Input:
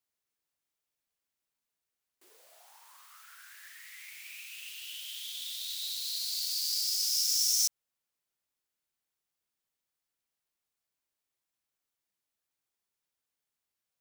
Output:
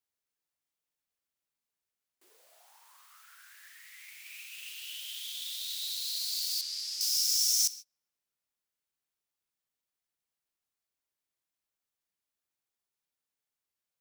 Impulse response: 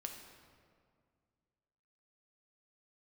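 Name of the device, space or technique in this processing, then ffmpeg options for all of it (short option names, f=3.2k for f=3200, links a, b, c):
keyed gated reverb: -filter_complex "[0:a]asplit=3[a][b][c];[1:a]atrim=start_sample=2205[d];[b][d]afir=irnorm=-1:irlink=0[e];[c]apad=whole_len=617744[f];[e][f]sidechaingate=range=-33dB:threshold=-45dB:ratio=16:detection=peak,volume=-2dB[g];[a][g]amix=inputs=2:normalize=0,asettb=1/sr,asplit=3[h][i][j];[h]atrim=end=6.614[k];[i]atrim=start=6.61:end=7.01,asetpts=PTS-STARTPTS,afade=t=in:d=0.004:c=qsin,afade=t=out:st=0.396:d=0.004:c=qsin,aemphasis=mode=reproduction:type=bsi[l];[j]atrim=start=7.006[m];[k][l]acrossfade=d=0.004:c1=hsin:c2=qsin[n];[n][m]acrossfade=d=0.004:c1=qsin:c2=hsin,volume=-3dB"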